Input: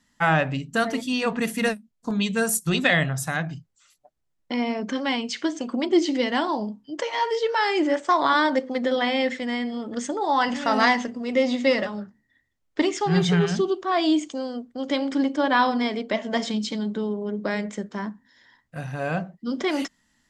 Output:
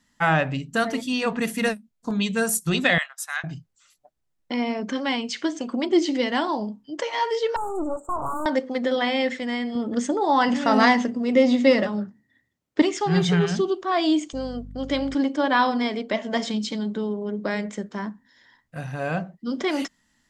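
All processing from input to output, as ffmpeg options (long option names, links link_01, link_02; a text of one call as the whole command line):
ffmpeg -i in.wav -filter_complex "[0:a]asettb=1/sr,asplit=3[link_01][link_02][link_03];[link_01]atrim=end=2.984[link_04];[link_02]atrim=start=2.98:end=3.44,asetpts=PTS-STARTPTS,afade=type=in:duration=0.004:curve=qsin,afade=type=out:start_time=0.456:duration=0.004:curve=qsin,highpass=frequency=1000:width=0.5412,highpass=frequency=1000:width=1.3066,agate=range=-33dB:threshold=-32dB:ratio=3:release=100:detection=peak[link_05];[link_03]atrim=start=3.436[link_06];[link_04][link_05]acrossfade=duration=0.004:curve1=hsin:curve2=qsin[link_07];[link_07][link_06]acrossfade=duration=0.004:curve1=qsin:curve2=hsin,asettb=1/sr,asplit=3[link_08][link_09][link_10];[link_08]atrim=end=7.564[link_11];[link_09]atrim=start=7.56:end=8.46,asetpts=PTS-STARTPTS,afade=type=in:duration=0.004:curve=qsin,afade=type=out:start_time=0.896:duration=0.004:curve=qsin,highshelf=frequency=6300:gain=6,aeval=exprs='(tanh(14.1*val(0)+0.8)-tanh(0.8))/14.1':channel_layout=same,asuperstop=centerf=3200:order=20:qfactor=0.54[link_12];[link_10]atrim=start=8.456[link_13];[link_11][link_12]acrossfade=duration=0.004:curve1=hsin:curve2=qsin[link_14];[link_14][link_13]acrossfade=duration=0.004:curve1=qsin:curve2=hsin,asettb=1/sr,asplit=3[link_15][link_16][link_17];[link_15]atrim=end=9.754[link_18];[link_16]atrim=start=9.75:end=12.82,asetpts=PTS-STARTPTS,afade=type=in:duration=0.004:curve=qsin,afade=type=out:start_time=3.066:duration=0.004:curve=qsin,highpass=120,lowshelf=frequency=430:gain=8[link_19];[link_17]atrim=start=12.816[link_20];[link_18][link_19]acrossfade=duration=0.004:curve1=hsin:curve2=qsin[link_21];[link_21][link_20]acrossfade=duration=0.004:curve1=qsin:curve2=hsin,asettb=1/sr,asplit=3[link_22][link_23][link_24];[link_22]atrim=end=14.334[link_25];[link_23]atrim=start=14.33:end=15.15,asetpts=PTS-STARTPTS,afade=type=in:duration=0.004:curve=qsin,afade=type=out:start_time=0.816:duration=0.004:curve=qsin,bandreject=frequency=910:width=7.2,aeval=exprs='val(0)+0.0126*(sin(2*PI*50*n/s)+sin(2*PI*2*50*n/s)/2+sin(2*PI*3*50*n/s)/3+sin(2*PI*4*50*n/s)/4+sin(2*PI*5*50*n/s)/5)':channel_layout=same[link_26];[link_24]atrim=start=15.146[link_27];[link_25][link_26]acrossfade=duration=0.004:curve1=hsin:curve2=qsin[link_28];[link_28][link_27]acrossfade=duration=0.004:curve1=qsin:curve2=hsin" out.wav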